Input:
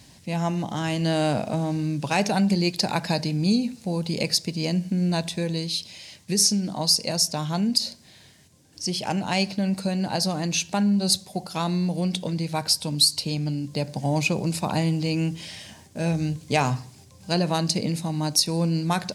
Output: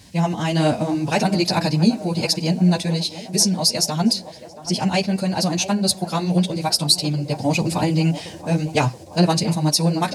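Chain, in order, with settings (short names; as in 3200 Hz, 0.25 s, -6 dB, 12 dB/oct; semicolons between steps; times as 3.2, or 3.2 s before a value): chorus voices 2, 0.85 Hz, delay 20 ms, depth 2.9 ms; time stretch by phase-locked vocoder 0.53×; narrowing echo 0.676 s, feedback 70%, band-pass 590 Hz, level -12 dB; gain +8.5 dB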